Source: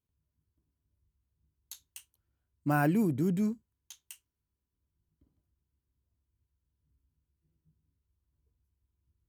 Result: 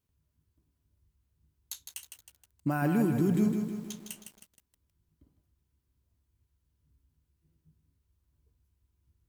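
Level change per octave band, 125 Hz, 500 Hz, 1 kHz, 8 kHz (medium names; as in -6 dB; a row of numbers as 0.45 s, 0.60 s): +1.5 dB, +1.5 dB, -2.5 dB, +5.5 dB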